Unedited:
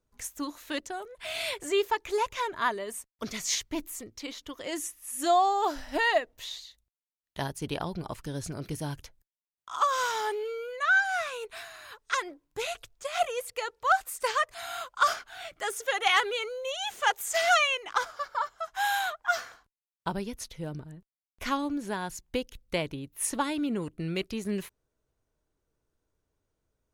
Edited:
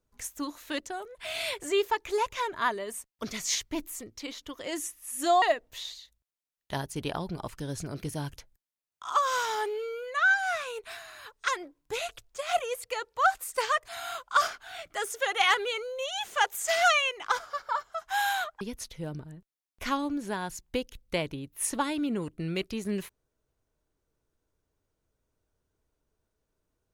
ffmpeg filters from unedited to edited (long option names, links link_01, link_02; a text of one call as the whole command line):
ffmpeg -i in.wav -filter_complex "[0:a]asplit=3[link_01][link_02][link_03];[link_01]atrim=end=5.422[link_04];[link_02]atrim=start=6.078:end=19.272[link_05];[link_03]atrim=start=20.208[link_06];[link_04][link_05]acrossfade=duration=0.004:curve1=hsin:curve2=hsin[link_07];[link_07][link_06]acrossfade=duration=0.004:curve1=hsin:curve2=hsin" out.wav